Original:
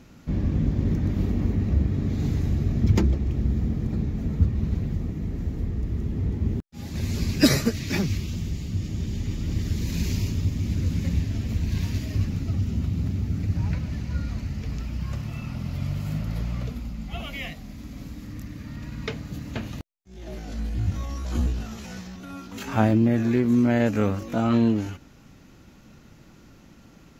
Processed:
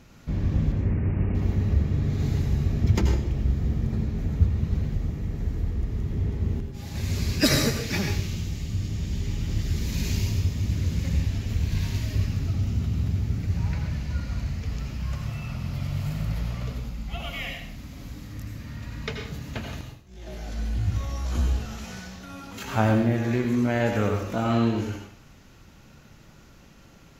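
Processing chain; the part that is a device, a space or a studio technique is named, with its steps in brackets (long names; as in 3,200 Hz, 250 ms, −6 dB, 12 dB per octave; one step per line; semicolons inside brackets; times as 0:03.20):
0:00.72–0:01.35: Butterworth low-pass 2,800 Hz 96 dB per octave
parametric band 270 Hz −5.5 dB 1.3 octaves
bathroom (convolution reverb RT60 0.55 s, pre-delay 77 ms, DRR 3 dB)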